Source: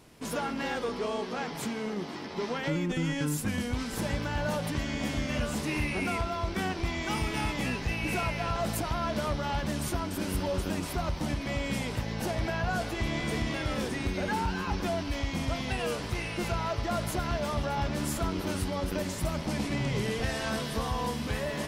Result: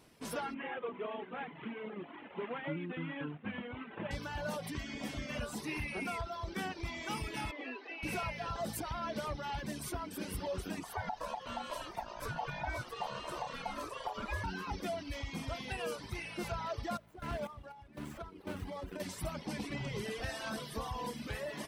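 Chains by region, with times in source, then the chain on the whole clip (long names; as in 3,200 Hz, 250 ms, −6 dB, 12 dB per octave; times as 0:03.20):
0:00.54–0:04.11: variable-slope delta modulation 16 kbit/s + high-pass filter 130 Hz
0:07.51–0:08.03: Butterworth high-pass 250 Hz 72 dB per octave + high-frequency loss of the air 210 metres
0:10.83–0:14.44: ring modulation 800 Hz + low-shelf EQ 130 Hz +11 dB
0:16.97–0:19.00: running median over 9 samples + sample-and-hold tremolo 4 Hz, depth 80%
whole clip: reverb reduction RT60 1.5 s; low-shelf EQ 160 Hz −4.5 dB; notch filter 6,900 Hz, Q 12; level −5 dB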